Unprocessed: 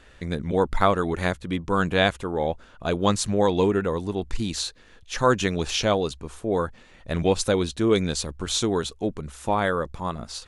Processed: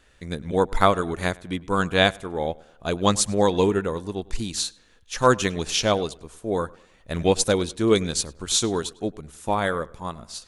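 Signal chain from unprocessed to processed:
high-shelf EQ 6,000 Hz +10 dB
tape delay 101 ms, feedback 46%, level −16.5 dB, low-pass 3,300 Hz
expander for the loud parts 1.5 to 1, over −35 dBFS
level +2.5 dB

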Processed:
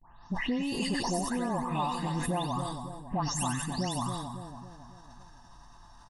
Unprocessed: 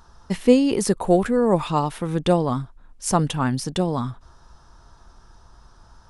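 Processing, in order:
every frequency bin delayed by itself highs late, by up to 324 ms
noise gate with hold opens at −46 dBFS
low-shelf EQ 260 Hz −7 dB
comb filter 1.1 ms, depth 73%
downward compressor 5 to 1, threshold −26 dBFS, peak gain reduction 11.5 dB
echo with a time of its own for lows and highs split 1,000 Hz, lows 277 ms, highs 92 ms, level −7.5 dB
level that may fall only so fast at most 38 dB per second
level −3.5 dB

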